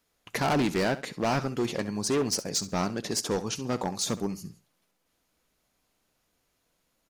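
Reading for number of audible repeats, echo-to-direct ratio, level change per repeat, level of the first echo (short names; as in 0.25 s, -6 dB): 2, -16.0 dB, -12.5 dB, -16.0 dB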